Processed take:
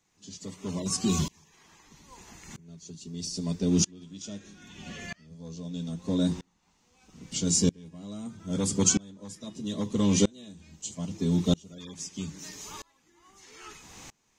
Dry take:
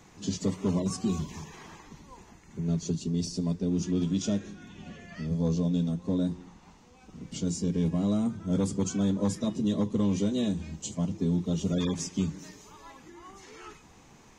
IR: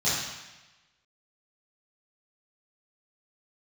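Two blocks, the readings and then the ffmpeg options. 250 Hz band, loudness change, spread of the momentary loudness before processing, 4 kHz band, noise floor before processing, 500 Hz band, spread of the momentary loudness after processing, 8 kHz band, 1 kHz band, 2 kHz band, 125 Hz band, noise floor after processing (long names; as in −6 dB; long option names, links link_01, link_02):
−2.0 dB, +0.5 dB, 20 LU, +5.5 dB, −56 dBFS, −1.5 dB, 22 LU, +9.5 dB, −0.5 dB, +3.5 dB, −2.0 dB, −69 dBFS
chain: -af "highshelf=frequency=2000:gain=11,aeval=exprs='val(0)*pow(10,-30*if(lt(mod(-0.78*n/s,1),2*abs(-0.78)/1000),1-mod(-0.78*n/s,1)/(2*abs(-0.78)/1000),(mod(-0.78*n/s,1)-2*abs(-0.78)/1000)/(1-2*abs(-0.78)/1000))/20)':channel_layout=same,volume=6.5dB"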